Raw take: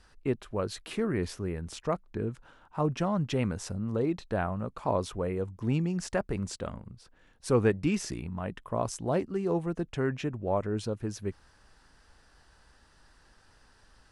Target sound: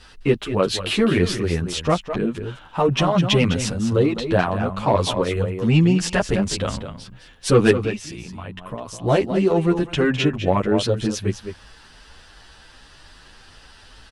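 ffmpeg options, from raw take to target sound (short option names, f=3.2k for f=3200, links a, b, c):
-filter_complex "[0:a]equalizer=f=3.2k:w=1.4:g=9.5,asplit=3[a][b][c];[a]afade=t=out:st=7.76:d=0.02[d];[b]acompressor=threshold=-41dB:ratio=6,afade=t=in:st=7.76:d=0.02,afade=t=out:st=9.03:d=0.02[e];[c]afade=t=in:st=9.03:d=0.02[f];[d][e][f]amix=inputs=3:normalize=0,aeval=exprs='0.266*sin(PI/2*1.41*val(0)/0.266)':c=same,aecho=1:1:207:0.316,asplit=2[g][h];[h]adelay=9.7,afreqshift=2.6[i];[g][i]amix=inputs=2:normalize=1,volume=7.5dB"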